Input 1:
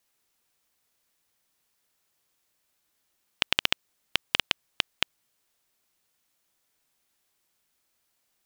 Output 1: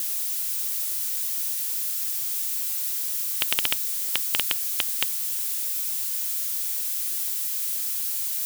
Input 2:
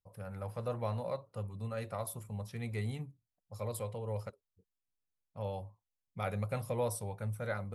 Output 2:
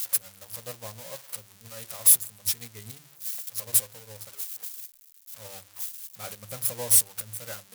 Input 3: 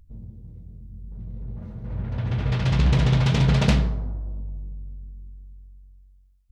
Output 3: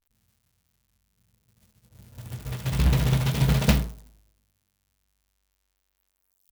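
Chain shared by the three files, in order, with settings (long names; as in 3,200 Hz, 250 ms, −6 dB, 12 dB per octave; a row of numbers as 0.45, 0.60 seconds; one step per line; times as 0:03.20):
spike at every zero crossing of −19 dBFS
mains-hum notches 50/100/150/200 Hz
expander for the loud parts 2.5 to 1, over −37 dBFS
loudness normalisation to −24 LKFS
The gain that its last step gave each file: −2.0, +9.0, +1.5 decibels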